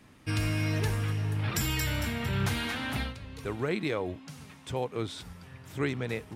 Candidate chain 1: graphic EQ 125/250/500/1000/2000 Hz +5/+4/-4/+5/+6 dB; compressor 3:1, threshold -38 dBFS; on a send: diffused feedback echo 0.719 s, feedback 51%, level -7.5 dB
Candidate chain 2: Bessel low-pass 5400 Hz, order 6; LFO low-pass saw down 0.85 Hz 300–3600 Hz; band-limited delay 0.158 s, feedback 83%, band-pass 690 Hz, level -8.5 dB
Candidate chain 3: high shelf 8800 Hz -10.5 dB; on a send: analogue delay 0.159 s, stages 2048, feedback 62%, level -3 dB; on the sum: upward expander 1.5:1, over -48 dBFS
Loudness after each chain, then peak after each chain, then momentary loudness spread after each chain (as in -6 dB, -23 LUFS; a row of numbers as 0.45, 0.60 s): -37.5, -31.0, -33.0 LUFS; -22.5, -15.0, -16.0 dBFS; 6, 9, 11 LU